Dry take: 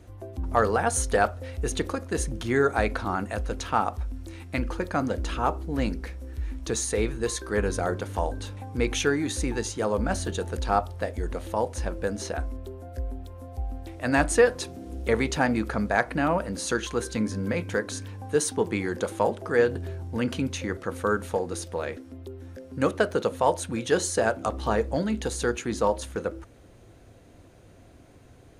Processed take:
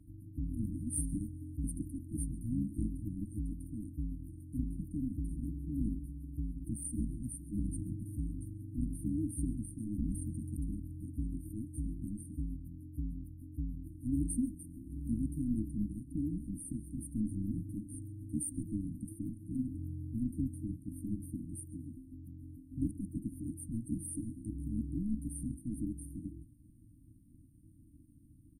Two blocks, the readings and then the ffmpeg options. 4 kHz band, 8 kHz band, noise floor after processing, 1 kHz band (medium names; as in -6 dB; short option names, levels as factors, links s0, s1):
under -40 dB, -12.0 dB, -59 dBFS, under -40 dB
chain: -filter_complex "[0:a]asplit=4[s0][s1][s2][s3];[s1]adelay=135,afreqshift=73,volume=0.0841[s4];[s2]adelay=270,afreqshift=146,volume=0.0295[s5];[s3]adelay=405,afreqshift=219,volume=0.0104[s6];[s0][s4][s5][s6]amix=inputs=4:normalize=0,tremolo=f=220:d=0.889,afftfilt=real='re*(1-between(b*sr/4096,330,8600))':imag='im*(1-between(b*sr/4096,330,8600))':win_size=4096:overlap=0.75,volume=0.75"